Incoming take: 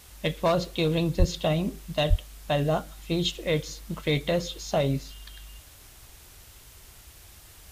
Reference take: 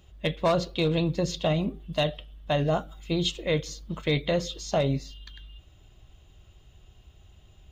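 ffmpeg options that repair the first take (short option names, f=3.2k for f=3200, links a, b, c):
-filter_complex "[0:a]asplit=3[a][b][c];[a]afade=t=out:st=1.18:d=0.02[d];[b]highpass=f=140:w=0.5412,highpass=f=140:w=1.3066,afade=t=in:st=1.18:d=0.02,afade=t=out:st=1.3:d=0.02[e];[c]afade=t=in:st=1.3:d=0.02[f];[d][e][f]amix=inputs=3:normalize=0,asplit=3[g][h][i];[g]afade=t=out:st=2.09:d=0.02[j];[h]highpass=f=140:w=0.5412,highpass=f=140:w=1.3066,afade=t=in:st=2.09:d=0.02,afade=t=out:st=2.21:d=0.02[k];[i]afade=t=in:st=2.21:d=0.02[l];[j][k][l]amix=inputs=3:normalize=0,afwtdn=0.0028"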